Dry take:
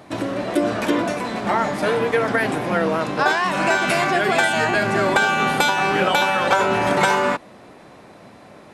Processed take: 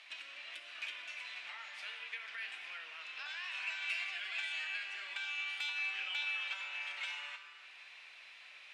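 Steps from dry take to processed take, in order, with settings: compression 3:1, threshold -37 dBFS, peak gain reduction 17.5 dB; ladder band-pass 3 kHz, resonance 55%; plate-style reverb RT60 2.2 s, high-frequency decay 0.8×, DRR 5.5 dB; trim +8 dB

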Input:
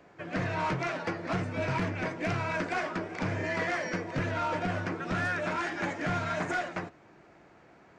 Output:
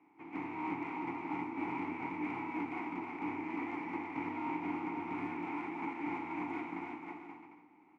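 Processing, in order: spectral contrast reduction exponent 0.45; vowel filter u; resonant high shelf 2.6 kHz -14 dB, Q 1.5; on a send: bouncing-ball echo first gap 320 ms, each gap 0.65×, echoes 5; on the sum: trim +4 dB

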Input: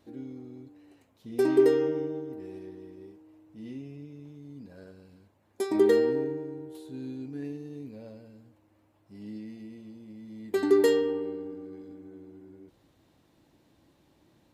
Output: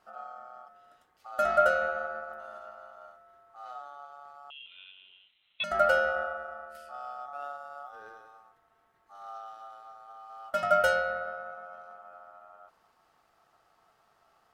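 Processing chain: ring modulator 1 kHz; 4.50–5.64 s: frequency inversion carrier 4 kHz

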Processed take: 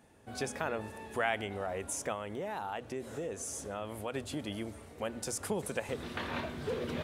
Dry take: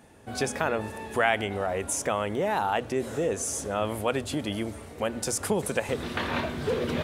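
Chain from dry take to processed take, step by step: 2.12–4.14 s: compression 2.5:1, threshold -28 dBFS, peak gain reduction 5.5 dB; trim -8 dB

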